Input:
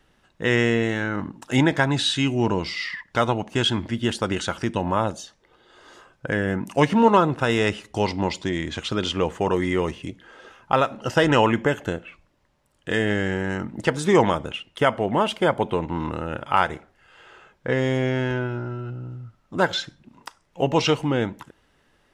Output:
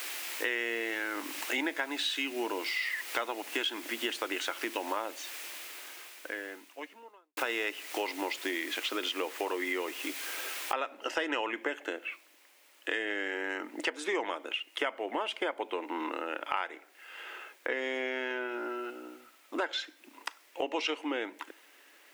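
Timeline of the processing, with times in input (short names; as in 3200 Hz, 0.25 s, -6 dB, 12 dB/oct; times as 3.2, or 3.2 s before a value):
5–7.37 fade out quadratic
10.73 noise floor step -40 dB -64 dB
whole clip: elliptic high-pass 290 Hz, stop band 50 dB; bell 2300 Hz +9.5 dB 1.1 oct; compressor 4:1, threshold -32 dBFS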